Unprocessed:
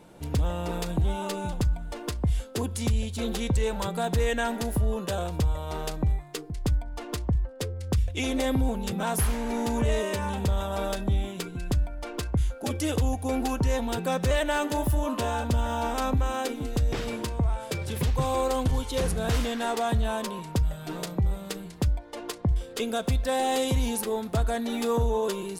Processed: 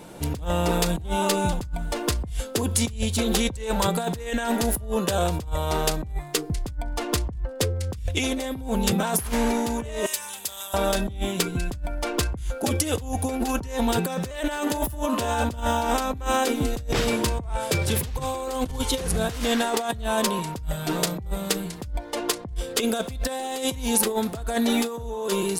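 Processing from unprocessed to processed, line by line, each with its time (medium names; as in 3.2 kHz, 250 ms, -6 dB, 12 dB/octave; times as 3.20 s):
10.06–10.74 s: differentiator
whole clip: bass shelf 100 Hz -3 dB; compressor with a negative ratio -30 dBFS, ratio -0.5; treble shelf 4.6 kHz +5 dB; trim +5.5 dB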